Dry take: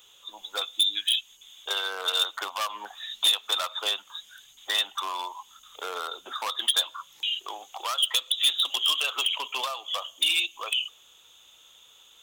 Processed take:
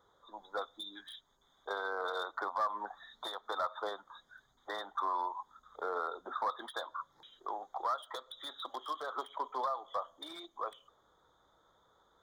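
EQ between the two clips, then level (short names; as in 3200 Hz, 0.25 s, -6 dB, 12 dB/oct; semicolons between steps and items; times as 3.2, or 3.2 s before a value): Butterworth band-stop 2700 Hz, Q 0.82; air absorption 390 m; +1.0 dB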